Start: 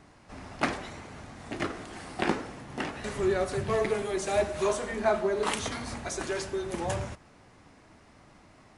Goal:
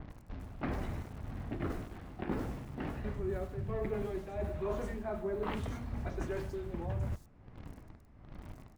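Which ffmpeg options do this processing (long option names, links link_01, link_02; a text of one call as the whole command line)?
ffmpeg -i in.wav -filter_complex "[0:a]aemphasis=mode=reproduction:type=riaa,tremolo=f=1.3:d=0.68,asplit=2[link_01][link_02];[link_02]acrusher=bits=6:mix=0:aa=0.000001,volume=-8.5dB[link_03];[link_01][link_03]amix=inputs=2:normalize=0,acrossover=split=4900[link_04][link_05];[link_05]adelay=100[link_06];[link_04][link_06]amix=inputs=2:normalize=0,areverse,acompressor=threshold=-31dB:ratio=5,areverse,adynamicequalizer=threshold=0.00141:dfrequency=4100:dqfactor=0.7:tfrequency=4100:tqfactor=0.7:attack=5:release=100:ratio=0.375:range=2:mode=cutabove:tftype=highshelf,volume=-3dB" out.wav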